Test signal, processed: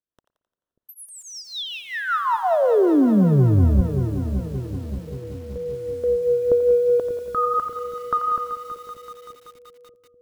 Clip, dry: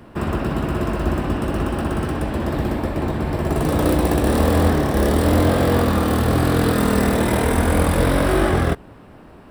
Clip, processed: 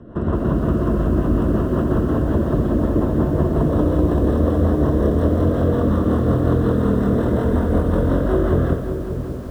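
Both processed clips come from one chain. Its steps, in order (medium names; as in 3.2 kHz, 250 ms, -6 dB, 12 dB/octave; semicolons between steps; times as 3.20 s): band-stop 810 Hz, Q 5.2; level rider gain up to 7 dB; in parallel at -1.5 dB: peak limiter -13 dBFS; on the sum: compression 2.5:1, threshold -15 dBFS; boxcar filter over 19 samples; rotary cabinet horn 5.5 Hz; on a send: two-band feedback delay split 510 Hz, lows 588 ms, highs 87 ms, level -10 dB; on the sum: spring tank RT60 1.4 s, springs 56 ms, chirp 70 ms, DRR 19.5 dB; bit-crushed delay 191 ms, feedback 80%, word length 7-bit, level -13 dB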